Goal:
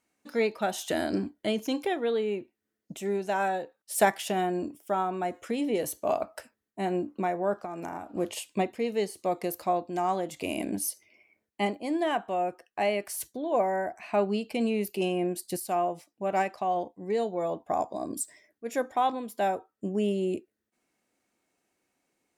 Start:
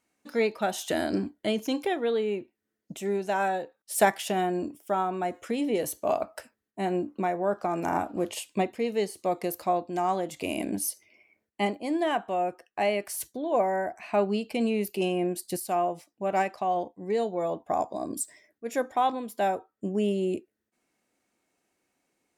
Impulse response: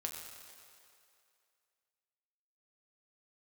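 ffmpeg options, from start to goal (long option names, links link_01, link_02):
-filter_complex "[0:a]asplit=3[link_01][link_02][link_03];[link_01]afade=type=out:start_time=7.6:duration=0.02[link_04];[link_02]acompressor=threshold=-32dB:ratio=12,afade=type=in:start_time=7.6:duration=0.02,afade=type=out:start_time=8.14:duration=0.02[link_05];[link_03]afade=type=in:start_time=8.14:duration=0.02[link_06];[link_04][link_05][link_06]amix=inputs=3:normalize=0,volume=-1dB"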